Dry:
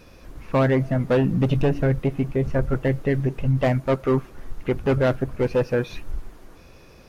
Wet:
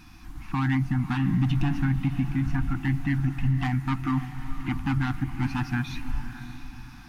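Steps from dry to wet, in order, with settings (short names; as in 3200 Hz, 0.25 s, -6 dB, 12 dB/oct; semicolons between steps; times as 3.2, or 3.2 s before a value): FFT band-reject 340–710 Hz; limiter -17 dBFS, peak gain reduction 6.5 dB; diffused feedback echo 0.582 s, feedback 44%, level -11 dB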